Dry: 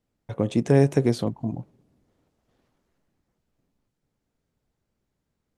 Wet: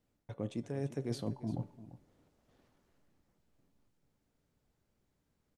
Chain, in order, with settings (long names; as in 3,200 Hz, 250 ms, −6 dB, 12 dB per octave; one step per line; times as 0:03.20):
reversed playback
downward compressor 16 to 1, threshold −32 dBFS, peak gain reduction 21 dB
reversed playback
tuned comb filter 290 Hz, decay 0.68 s, mix 50%
single-tap delay 344 ms −15.5 dB
level +5 dB